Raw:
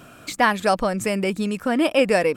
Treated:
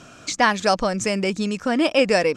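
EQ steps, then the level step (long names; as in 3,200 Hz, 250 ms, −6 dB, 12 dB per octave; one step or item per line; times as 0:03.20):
low-pass with resonance 6,200 Hz, resonance Q 3.3
0.0 dB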